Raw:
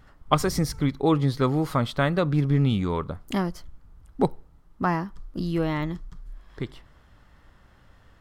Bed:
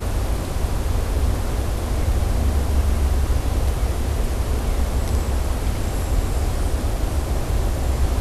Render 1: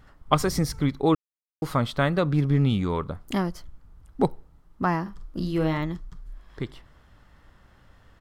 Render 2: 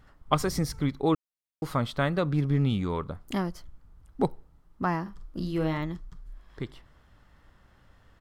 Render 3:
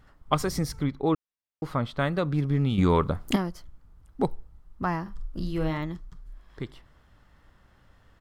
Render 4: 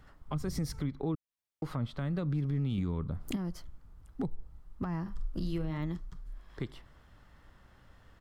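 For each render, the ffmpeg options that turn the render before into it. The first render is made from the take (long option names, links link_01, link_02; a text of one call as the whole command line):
ffmpeg -i in.wav -filter_complex "[0:a]asplit=3[link_01][link_02][link_03];[link_01]afade=type=out:start_time=5.05:duration=0.02[link_04];[link_02]asplit=2[link_05][link_06];[link_06]adelay=44,volume=-8dB[link_07];[link_05][link_07]amix=inputs=2:normalize=0,afade=type=in:start_time=5.05:duration=0.02,afade=type=out:start_time=5.77:duration=0.02[link_08];[link_03]afade=type=in:start_time=5.77:duration=0.02[link_09];[link_04][link_08][link_09]amix=inputs=3:normalize=0,asplit=3[link_10][link_11][link_12];[link_10]atrim=end=1.15,asetpts=PTS-STARTPTS,afade=type=out:start_time=1.146:duration=0.004:curve=hsin[link_13];[link_11]atrim=start=1.15:end=1.62,asetpts=PTS-STARTPTS,volume=0[link_14];[link_12]atrim=start=1.62,asetpts=PTS-STARTPTS,afade=type=in:duration=0.004:curve=hsin[link_15];[link_13][link_14][link_15]concat=n=3:v=0:a=1" out.wav
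ffmpeg -i in.wav -af "volume=-3.5dB" out.wav
ffmpeg -i in.wav -filter_complex "[0:a]asettb=1/sr,asplit=3[link_01][link_02][link_03];[link_01]atrim=end=0.834[link_04];[link_02]atrim=start=0.83:end=1.99,asetpts=PTS-STARTPTS,afade=type=in:duration=0.004:curve=qsin,afade=type=out:start_time=1.156:duration=0.004:curve=qsin,highshelf=frequency=4800:gain=-11[link_05];[link_03]atrim=start=1.986[link_06];[link_04][link_05]acrossfade=duration=0.004:curve1=hsin:curve2=qsin[link_07];[link_07][link_06]acrossfade=duration=0.004:curve1=qsin:curve2=hsin,asplit=3[link_08][link_09][link_10];[link_08]afade=type=out:start_time=4.27:duration=0.02[link_11];[link_09]asubboost=boost=2.5:cutoff=120,afade=type=in:start_time=4.27:duration=0.02,afade=type=out:start_time=5.69:duration=0.02[link_12];[link_10]afade=type=in:start_time=5.69:duration=0.02[link_13];[link_11][link_12][link_13]amix=inputs=3:normalize=0,asplit=3[link_14][link_15][link_16];[link_14]atrim=end=2.782[link_17];[link_15]atrim=start=2.778:end=3.362,asetpts=PTS-STARTPTS,volume=9dB[link_18];[link_16]atrim=start=3.358[link_19];[link_17][link_18]acrossfade=duration=0.004:curve1=hsin:curve2=hsin[link_20];[link_20][link_19]acrossfade=duration=0.004:curve1=hsin:curve2=hsin" out.wav
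ffmpeg -i in.wav -filter_complex "[0:a]acrossover=split=270[link_01][link_02];[link_02]acompressor=threshold=-35dB:ratio=16[link_03];[link_01][link_03]amix=inputs=2:normalize=0,alimiter=level_in=0.5dB:limit=-24dB:level=0:latency=1:release=182,volume=-0.5dB" out.wav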